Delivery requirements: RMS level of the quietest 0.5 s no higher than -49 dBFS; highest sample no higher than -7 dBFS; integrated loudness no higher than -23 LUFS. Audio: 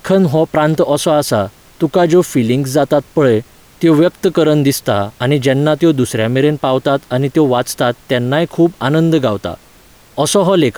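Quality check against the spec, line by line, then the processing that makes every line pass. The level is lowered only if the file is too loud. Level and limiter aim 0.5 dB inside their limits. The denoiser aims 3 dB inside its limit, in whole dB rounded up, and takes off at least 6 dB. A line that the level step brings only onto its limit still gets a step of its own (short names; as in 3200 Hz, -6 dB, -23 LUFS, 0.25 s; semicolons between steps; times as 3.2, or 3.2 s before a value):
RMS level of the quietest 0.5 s -44 dBFS: fail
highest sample -2.0 dBFS: fail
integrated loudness -13.5 LUFS: fail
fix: gain -10 dB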